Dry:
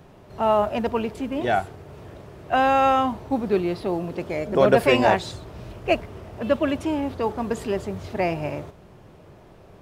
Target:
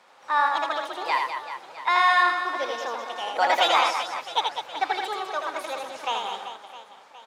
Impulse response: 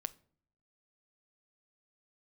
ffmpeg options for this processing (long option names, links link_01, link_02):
-af "highpass=670,lowpass=6700,aecho=1:1:110|275|522.5|893.8|1451:0.631|0.398|0.251|0.158|0.1,asetrate=59535,aresample=44100"